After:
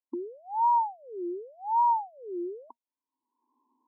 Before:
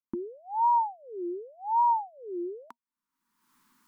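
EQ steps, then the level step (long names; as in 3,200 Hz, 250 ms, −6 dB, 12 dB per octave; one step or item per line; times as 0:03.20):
linear-phase brick-wall band-pass 240–1,100 Hz
0.0 dB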